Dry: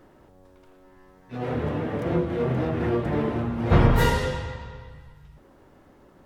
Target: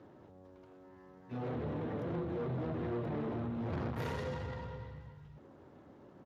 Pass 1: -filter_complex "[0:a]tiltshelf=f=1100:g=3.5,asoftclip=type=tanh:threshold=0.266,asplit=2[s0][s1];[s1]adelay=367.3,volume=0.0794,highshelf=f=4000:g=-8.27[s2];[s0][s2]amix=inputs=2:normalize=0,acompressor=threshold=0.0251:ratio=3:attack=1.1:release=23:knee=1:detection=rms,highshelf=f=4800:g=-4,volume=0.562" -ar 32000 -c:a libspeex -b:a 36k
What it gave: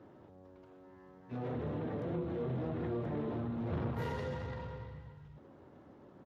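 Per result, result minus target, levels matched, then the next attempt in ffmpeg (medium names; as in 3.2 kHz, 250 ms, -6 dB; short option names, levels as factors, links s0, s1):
saturation: distortion -8 dB; 8 kHz band -4.5 dB
-filter_complex "[0:a]tiltshelf=f=1100:g=3.5,asoftclip=type=tanh:threshold=0.075,asplit=2[s0][s1];[s1]adelay=367.3,volume=0.0794,highshelf=f=4000:g=-8.27[s2];[s0][s2]amix=inputs=2:normalize=0,acompressor=threshold=0.0251:ratio=3:attack=1.1:release=23:knee=1:detection=rms,highshelf=f=4800:g=-4,volume=0.562" -ar 32000 -c:a libspeex -b:a 36k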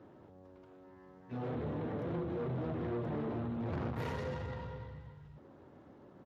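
8 kHz band -2.5 dB
-filter_complex "[0:a]tiltshelf=f=1100:g=3.5,asoftclip=type=tanh:threshold=0.075,asplit=2[s0][s1];[s1]adelay=367.3,volume=0.0794,highshelf=f=4000:g=-8.27[s2];[s0][s2]amix=inputs=2:normalize=0,acompressor=threshold=0.0251:ratio=3:attack=1.1:release=23:knee=1:detection=rms,volume=0.562" -ar 32000 -c:a libspeex -b:a 36k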